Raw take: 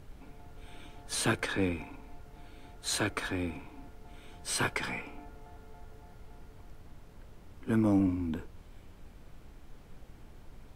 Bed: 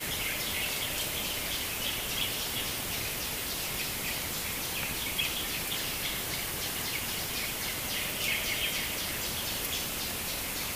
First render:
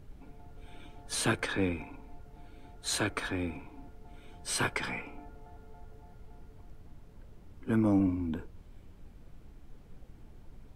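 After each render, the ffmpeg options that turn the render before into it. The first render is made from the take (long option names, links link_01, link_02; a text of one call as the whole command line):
ffmpeg -i in.wav -af "afftdn=noise_reduction=6:noise_floor=-54" out.wav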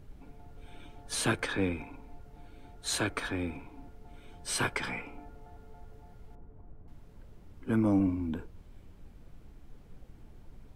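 ffmpeg -i in.wav -filter_complex "[0:a]asettb=1/sr,asplit=3[link_01][link_02][link_03];[link_01]atrim=end=6.354[link_04];[link_02]atrim=start=6.35:end=6.88,asetpts=PTS-STARTPTS,afade=type=in:duration=0.004:curve=qsin,afade=type=out:start_time=0.526:duration=0.004:curve=qsin,lowpass=1100[link_05];[link_03]atrim=start=6.876[link_06];[link_04][link_05]acrossfade=duration=0.004:curve1=hsin:curve2=qsin[link_07];[link_07][link_06]acrossfade=duration=0.004:curve1=qsin:curve2=hsin" out.wav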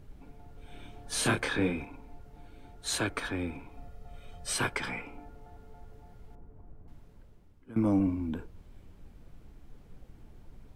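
ffmpeg -i in.wav -filter_complex "[0:a]asettb=1/sr,asplit=3[link_01][link_02][link_03];[link_01]atrim=end=0.674[link_04];[link_02]atrim=start=0.67:end=1.85,asetpts=PTS-STARTPTS,afade=type=in:duration=0.004:curve=qsin,afade=type=out:start_time=1.176:duration=0.004:curve=qsin,asplit=2[link_05][link_06];[link_06]adelay=28,volume=-3dB[link_07];[link_05][link_07]amix=inputs=2:normalize=0,atrim=end_sample=52038[link_08];[link_03]atrim=start=1.846[link_09];[link_04][link_08]acrossfade=duration=0.004:curve1=hsin:curve2=qsin[link_10];[link_10][link_09]acrossfade=duration=0.004:curve1=qsin:curve2=hsin,asettb=1/sr,asplit=3[link_11][link_12][link_13];[link_11]atrim=end=3.714[link_14];[link_12]atrim=start=3.71:end=4.53,asetpts=PTS-STARTPTS,afade=type=in:duration=0.004:curve=qsin,afade=type=out:start_time=0.816:duration=0.004:curve=qsin,aecho=1:1:1.6:0.65,atrim=end_sample=36162[link_15];[link_13]atrim=start=4.526[link_16];[link_14][link_15]acrossfade=duration=0.004:curve1=hsin:curve2=qsin[link_17];[link_17][link_16]acrossfade=duration=0.004:curve1=qsin:curve2=hsin,asplit=2[link_18][link_19];[link_18]atrim=end=7.76,asetpts=PTS-STARTPTS,afade=type=out:start_time=6.91:duration=0.85:silence=0.105925[link_20];[link_19]atrim=start=7.76,asetpts=PTS-STARTPTS,afade=type=in:duration=0.004:curve=hsin:silence=0.105925[link_21];[link_20][link_21]concat=n=2:v=0:a=1" out.wav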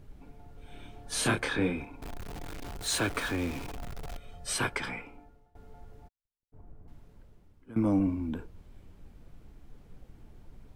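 ffmpeg -i in.wav -filter_complex "[0:a]asettb=1/sr,asplit=3[link_01][link_02][link_03];[link_01]atrim=end=2.024[link_04];[link_02]atrim=start=2.02:end=4.18,asetpts=PTS-STARTPTS,afade=type=in:duration=0.004:curve=qsin,afade=type=out:start_time=2.156:duration=0.004:curve=qsin,aeval=exprs='val(0)+0.5*0.0158*sgn(val(0))':channel_layout=same[link_05];[link_03]atrim=start=4.176[link_06];[link_04][link_05]acrossfade=duration=0.004:curve1=hsin:curve2=qsin[link_07];[link_07][link_06]acrossfade=duration=0.004:curve1=qsin:curve2=hsin,asplit=3[link_08][link_09][link_10];[link_08]afade=type=out:start_time=6.07:duration=0.02[link_11];[link_09]agate=range=-58dB:threshold=-40dB:ratio=16:release=100:detection=peak,afade=type=in:start_time=6.07:duration=0.02,afade=type=out:start_time=6.52:duration=0.02[link_12];[link_10]afade=type=in:start_time=6.52:duration=0.02[link_13];[link_11][link_12][link_13]amix=inputs=3:normalize=0,asplit=2[link_14][link_15];[link_14]atrim=end=5.55,asetpts=PTS-STARTPTS,afade=type=out:start_time=4.83:duration=0.72:silence=0.0794328[link_16];[link_15]atrim=start=5.55,asetpts=PTS-STARTPTS,afade=type=in:duration=0.004:curve=hsin:silence=0.0794328[link_17];[link_16][link_17]concat=n=2:v=0:a=1" out.wav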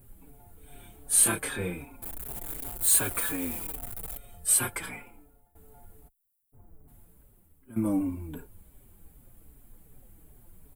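ffmpeg -i in.wav -filter_complex "[0:a]aexciter=amount=9.3:drive=7.5:freq=8100,asplit=2[link_01][link_02];[link_02]adelay=5.1,afreqshift=-2.6[link_03];[link_01][link_03]amix=inputs=2:normalize=1" out.wav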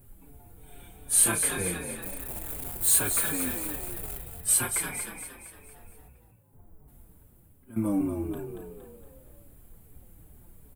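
ffmpeg -i in.wav -filter_complex "[0:a]asplit=2[link_01][link_02];[link_02]adelay=35,volume=-12.5dB[link_03];[link_01][link_03]amix=inputs=2:normalize=0,asplit=7[link_04][link_05][link_06][link_07][link_08][link_09][link_10];[link_05]adelay=232,afreqshift=47,volume=-7dB[link_11];[link_06]adelay=464,afreqshift=94,volume=-13.2dB[link_12];[link_07]adelay=696,afreqshift=141,volume=-19.4dB[link_13];[link_08]adelay=928,afreqshift=188,volume=-25.6dB[link_14];[link_09]adelay=1160,afreqshift=235,volume=-31.8dB[link_15];[link_10]adelay=1392,afreqshift=282,volume=-38dB[link_16];[link_04][link_11][link_12][link_13][link_14][link_15][link_16]amix=inputs=7:normalize=0" out.wav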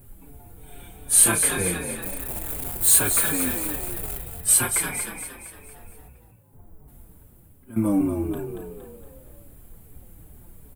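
ffmpeg -i in.wav -af "volume=5.5dB" out.wav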